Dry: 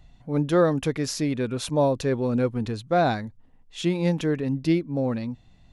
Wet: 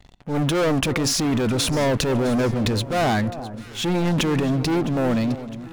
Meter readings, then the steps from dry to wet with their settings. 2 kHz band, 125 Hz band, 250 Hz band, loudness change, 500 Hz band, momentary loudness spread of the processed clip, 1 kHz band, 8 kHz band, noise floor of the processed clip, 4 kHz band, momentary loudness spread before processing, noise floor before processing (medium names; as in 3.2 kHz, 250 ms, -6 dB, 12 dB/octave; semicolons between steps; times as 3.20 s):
+6.5 dB, +4.0 dB, +3.5 dB, +3.0 dB, +1.0 dB, 7 LU, +2.5 dB, +10.0 dB, -40 dBFS, +10.0 dB, 9 LU, -55 dBFS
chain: waveshaping leveller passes 5; transient shaper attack -5 dB, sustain +8 dB; echo whose repeats swap between lows and highs 330 ms, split 1.2 kHz, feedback 67%, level -13 dB; trim -7.5 dB